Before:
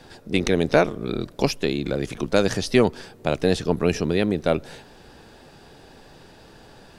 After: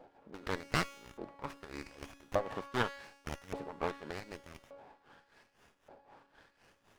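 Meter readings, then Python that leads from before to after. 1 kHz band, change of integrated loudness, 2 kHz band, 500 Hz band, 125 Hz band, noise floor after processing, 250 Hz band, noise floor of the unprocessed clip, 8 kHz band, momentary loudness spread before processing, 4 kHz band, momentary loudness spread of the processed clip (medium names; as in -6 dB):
-10.0 dB, -16.5 dB, -12.0 dB, -19.0 dB, -18.0 dB, -72 dBFS, -21.5 dB, -49 dBFS, -16.0 dB, 8 LU, -15.0 dB, 19 LU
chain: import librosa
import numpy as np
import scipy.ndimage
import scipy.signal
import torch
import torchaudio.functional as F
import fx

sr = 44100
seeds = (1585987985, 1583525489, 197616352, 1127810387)

p1 = fx.self_delay(x, sr, depth_ms=0.64)
p2 = (np.mod(10.0 ** (9.0 / 20.0) * p1 + 1.0, 2.0) - 1.0) / 10.0 ** (9.0 / 20.0)
p3 = p1 + (p2 * 10.0 ** (-9.5 / 20.0))
p4 = p3 * (1.0 - 0.85 / 2.0 + 0.85 / 2.0 * np.cos(2.0 * np.pi * 3.9 * (np.arange(len(p3)) / sr)))
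p5 = fx.low_shelf(p4, sr, hz=320.0, db=6.0)
p6 = fx.comb_fb(p5, sr, f0_hz=280.0, decay_s=1.2, harmonics='all', damping=0.0, mix_pct=80)
p7 = fx.filter_lfo_bandpass(p6, sr, shape='saw_up', hz=0.85, low_hz=610.0, high_hz=6100.0, q=2.2)
p8 = fx.running_max(p7, sr, window=9)
y = p8 * 10.0 ** (9.5 / 20.0)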